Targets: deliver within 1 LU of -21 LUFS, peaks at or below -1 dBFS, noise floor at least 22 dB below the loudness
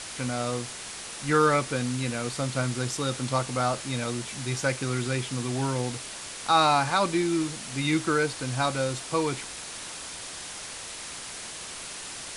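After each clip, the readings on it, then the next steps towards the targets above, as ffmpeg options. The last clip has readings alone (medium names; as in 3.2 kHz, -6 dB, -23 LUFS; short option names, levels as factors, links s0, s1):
noise floor -39 dBFS; noise floor target -50 dBFS; loudness -28.0 LUFS; peak level -9.0 dBFS; loudness target -21.0 LUFS
-> -af "afftdn=nr=11:nf=-39"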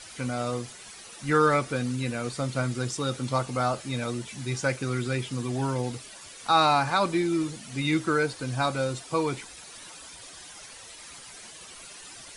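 noise floor -46 dBFS; noise floor target -50 dBFS
-> -af "afftdn=nr=6:nf=-46"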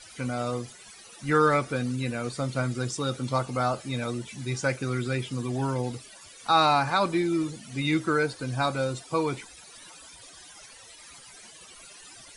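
noise floor -49 dBFS; noise floor target -50 dBFS
-> -af "afftdn=nr=6:nf=-49"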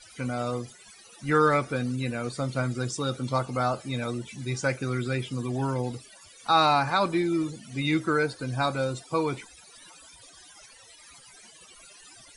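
noise floor -52 dBFS; loudness -27.5 LUFS; peak level -9.5 dBFS; loudness target -21.0 LUFS
-> -af "volume=2.11"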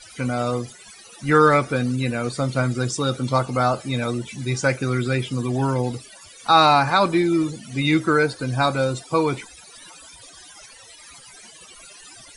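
loudness -21.0 LUFS; peak level -3.0 dBFS; noise floor -46 dBFS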